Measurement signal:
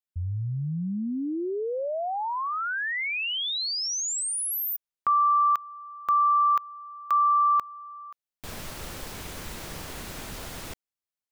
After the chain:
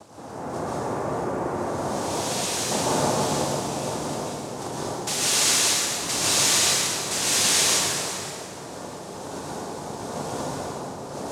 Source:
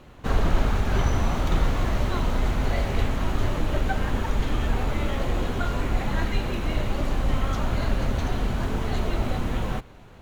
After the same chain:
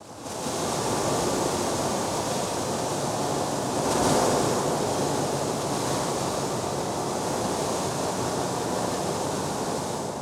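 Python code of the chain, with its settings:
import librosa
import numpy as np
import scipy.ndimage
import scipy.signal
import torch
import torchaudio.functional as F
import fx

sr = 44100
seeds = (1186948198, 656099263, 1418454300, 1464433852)

y = scipy.signal.medfilt(x, 25)
y = fx.dmg_wind(y, sr, seeds[0], corner_hz=340.0, level_db=-32.0)
y = fx.noise_vocoder(y, sr, seeds[1], bands=2)
y = fx.high_shelf(y, sr, hz=4300.0, db=10.5)
y = fx.echo_wet_lowpass(y, sr, ms=335, feedback_pct=69, hz=790.0, wet_db=-7.0)
y = fx.rev_plate(y, sr, seeds[2], rt60_s=2.7, hf_ratio=0.75, predelay_ms=110, drr_db=-7.5)
y = y * 10.0 ** (-8.0 / 20.0)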